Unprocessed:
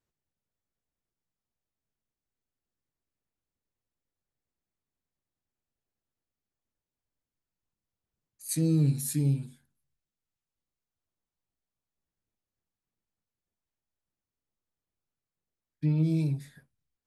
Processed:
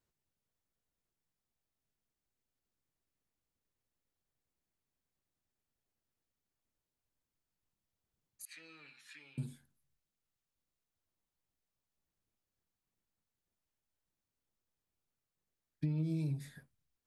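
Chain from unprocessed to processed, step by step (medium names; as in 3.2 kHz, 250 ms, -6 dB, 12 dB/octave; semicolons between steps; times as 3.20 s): 8.45–9.38 s: Chebyshev band-pass 1.3–2.8 kHz, order 2; compression 10:1, threshold -32 dBFS, peak gain reduction 10.5 dB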